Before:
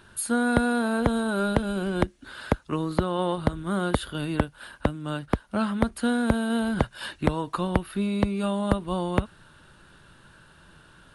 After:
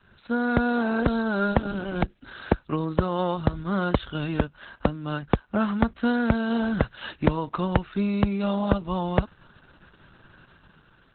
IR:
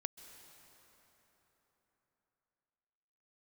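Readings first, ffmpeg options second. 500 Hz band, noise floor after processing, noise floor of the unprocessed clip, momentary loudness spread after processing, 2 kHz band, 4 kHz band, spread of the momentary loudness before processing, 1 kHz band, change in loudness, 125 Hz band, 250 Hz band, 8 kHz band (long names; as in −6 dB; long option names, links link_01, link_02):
+0.5 dB, −59 dBFS, −55 dBFS, 6 LU, +0.5 dB, −2.0 dB, 6 LU, +1.0 dB, +0.5 dB, +1.5 dB, +0.5 dB, below −40 dB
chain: -af "lowpass=3700,adynamicequalizer=threshold=0.0126:dfrequency=330:dqfactor=1.7:tfrequency=330:tqfactor=1.7:attack=5:release=100:ratio=0.375:range=2.5:mode=cutabove:tftype=bell,dynaudnorm=framelen=120:gausssize=9:maxgain=4.5dB,volume=-1.5dB" -ar 48000 -c:a libopus -b:a 8k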